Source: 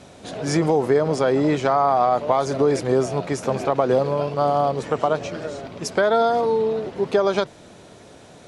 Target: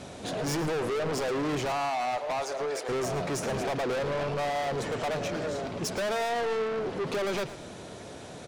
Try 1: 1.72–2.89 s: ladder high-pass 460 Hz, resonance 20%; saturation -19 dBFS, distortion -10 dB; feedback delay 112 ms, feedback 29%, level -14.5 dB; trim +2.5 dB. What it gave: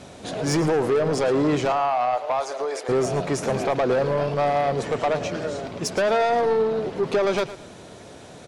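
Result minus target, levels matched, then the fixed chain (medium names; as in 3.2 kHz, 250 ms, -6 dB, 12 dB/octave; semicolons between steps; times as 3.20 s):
saturation: distortion -7 dB
1.72–2.89 s: ladder high-pass 460 Hz, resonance 20%; saturation -30.5 dBFS, distortion -3 dB; feedback delay 112 ms, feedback 29%, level -14.5 dB; trim +2.5 dB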